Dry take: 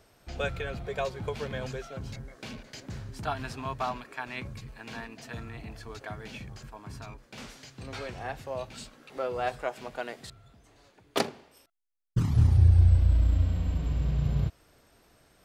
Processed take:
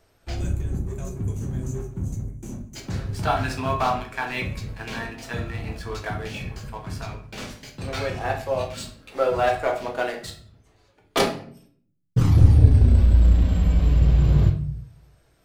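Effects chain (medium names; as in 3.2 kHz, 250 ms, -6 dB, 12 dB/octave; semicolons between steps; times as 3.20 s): reverb removal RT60 0.52 s; time-frequency box 0.35–2.76 s, 390–5800 Hz -24 dB; waveshaping leveller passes 2; simulated room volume 67 m³, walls mixed, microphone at 0.69 m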